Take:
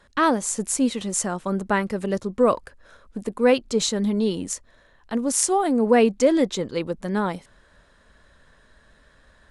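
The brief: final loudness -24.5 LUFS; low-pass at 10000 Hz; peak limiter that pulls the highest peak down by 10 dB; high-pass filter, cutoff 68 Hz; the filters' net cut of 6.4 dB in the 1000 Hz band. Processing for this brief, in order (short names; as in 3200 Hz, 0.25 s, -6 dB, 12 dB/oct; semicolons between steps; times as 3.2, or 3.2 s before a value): HPF 68 Hz; LPF 10000 Hz; bell 1000 Hz -9 dB; gain +1 dB; limiter -13 dBFS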